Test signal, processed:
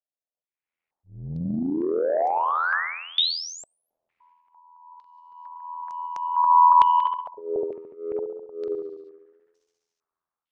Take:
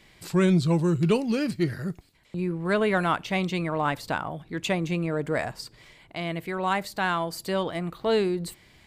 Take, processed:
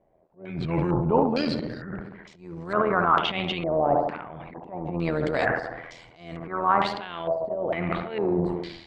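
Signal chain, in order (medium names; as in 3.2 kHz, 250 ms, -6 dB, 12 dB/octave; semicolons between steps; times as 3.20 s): peaking EQ 740 Hz +4 dB 2.3 oct; slow attack 402 ms; tape echo 70 ms, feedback 72%, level -8 dB, low-pass 1.5 kHz; level rider gain up to 16 dB; AM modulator 83 Hz, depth 50%; transient shaper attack -11 dB, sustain +9 dB; step-sequenced low-pass 2.2 Hz 650–6000 Hz; trim -9 dB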